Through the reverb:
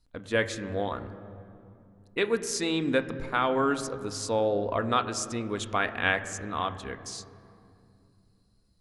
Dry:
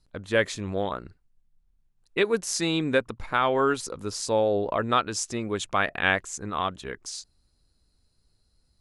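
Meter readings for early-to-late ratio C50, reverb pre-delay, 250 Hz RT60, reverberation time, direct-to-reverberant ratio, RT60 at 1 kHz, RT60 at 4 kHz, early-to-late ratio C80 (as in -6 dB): 13.0 dB, 3 ms, 3.9 s, 2.6 s, 9.0 dB, 2.5 s, 1.7 s, 13.5 dB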